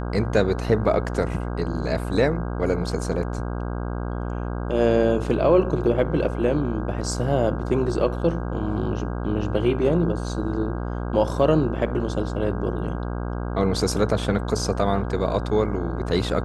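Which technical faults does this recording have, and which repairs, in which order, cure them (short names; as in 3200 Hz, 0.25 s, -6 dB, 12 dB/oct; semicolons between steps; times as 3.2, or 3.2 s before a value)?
buzz 60 Hz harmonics 27 -28 dBFS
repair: de-hum 60 Hz, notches 27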